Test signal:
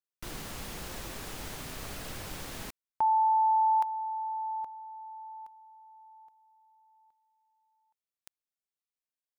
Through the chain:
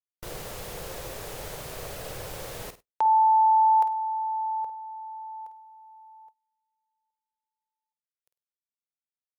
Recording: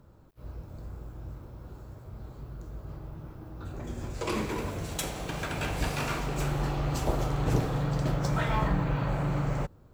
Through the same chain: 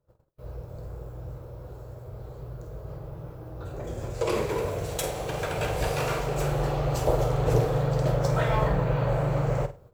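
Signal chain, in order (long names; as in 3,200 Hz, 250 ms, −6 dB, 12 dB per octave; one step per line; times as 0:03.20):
graphic EQ with 10 bands 125 Hz +5 dB, 250 Hz −9 dB, 500 Hz +12 dB, 16,000 Hz +4 dB
flutter between parallel walls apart 8.6 metres, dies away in 0.27 s
noise gate −50 dBFS, range −23 dB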